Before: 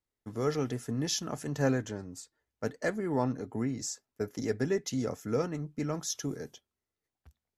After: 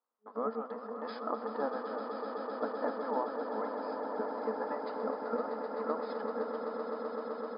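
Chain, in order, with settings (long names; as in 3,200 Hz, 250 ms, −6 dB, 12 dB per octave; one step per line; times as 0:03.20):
brick-wall band-pass 420–5,100 Hz
pitch-shifted copies added −12 semitones −5 dB
downward compressor, threshold −35 dBFS, peak gain reduction 11 dB
high shelf with overshoot 1,700 Hz −13 dB, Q 3
echo that builds up and dies away 128 ms, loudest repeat 8, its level −10 dB
level +2 dB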